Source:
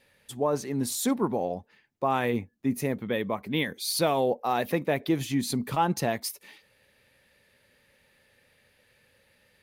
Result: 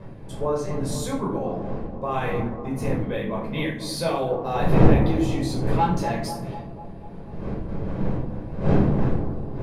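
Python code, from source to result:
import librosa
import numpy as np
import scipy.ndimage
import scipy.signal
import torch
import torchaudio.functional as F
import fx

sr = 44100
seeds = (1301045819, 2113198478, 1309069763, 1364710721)

p1 = fx.self_delay(x, sr, depth_ms=0.052, at=(5.48, 6.14))
p2 = fx.dmg_wind(p1, sr, seeds[0], corner_hz=340.0, level_db=-29.0)
p3 = scipy.signal.sosfilt(scipy.signal.butter(2, 9700.0, 'lowpass', fs=sr, output='sos'), p2)
p4 = p3 + fx.echo_bbd(p3, sr, ms=245, stages=2048, feedback_pct=62, wet_db=-10, dry=0)
p5 = fx.room_shoebox(p4, sr, seeds[1], volume_m3=630.0, walls='furnished', distance_m=5.2)
y = F.gain(torch.from_numpy(p5), -7.5).numpy()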